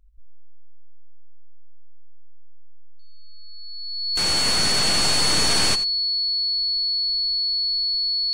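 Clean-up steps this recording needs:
notch filter 4,400 Hz, Q 30
echo removal 87 ms −15 dB

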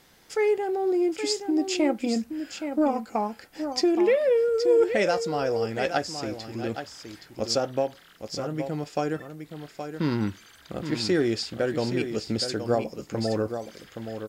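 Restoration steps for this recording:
downward expander −43 dBFS, range −21 dB
echo removal 821 ms −8.5 dB

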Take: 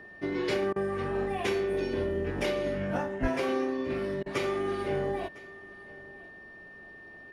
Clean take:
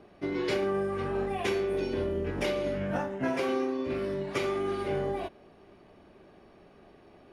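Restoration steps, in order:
notch filter 1,800 Hz, Q 30
0:03.21–0:03.33: high-pass filter 140 Hz 24 dB per octave
repair the gap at 0:00.73/0:04.23, 29 ms
echo removal 1,005 ms −21 dB

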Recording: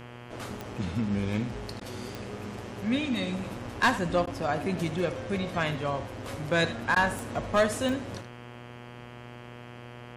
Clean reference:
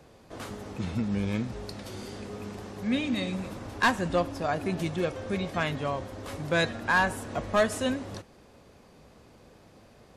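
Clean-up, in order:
click removal
hum removal 120.9 Hz, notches 27
repair the gap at 0:01.80/0:04.26/0:06.95, 10 ms
echo removal 78 ms −13.5 dB

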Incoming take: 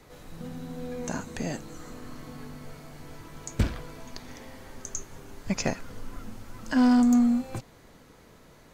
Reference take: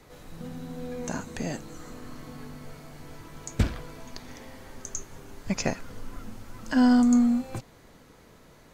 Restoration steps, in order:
clipped peaks rebuilt −16.5 dBFS

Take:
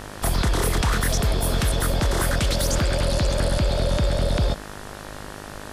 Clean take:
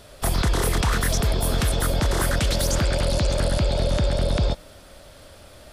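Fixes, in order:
hum removal 51.1 Hz, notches 37
noise reduction from a noise print 9 dB

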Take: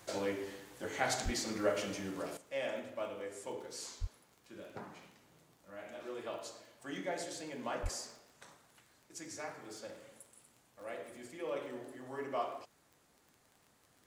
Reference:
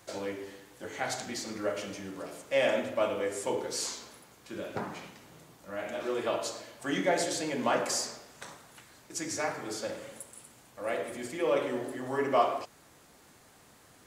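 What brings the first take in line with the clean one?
click removal
0:01.24–0:01.36: high-pass filter 140 Hz 24 dB per octave
0:02.37: level correction +11.5 dB
0:04.00–0:04.12: high-pass filter 140 Hz 24 dB per octave
0:07.82–0:07.94: high-pass filter 140 Hz 24 dB per octave

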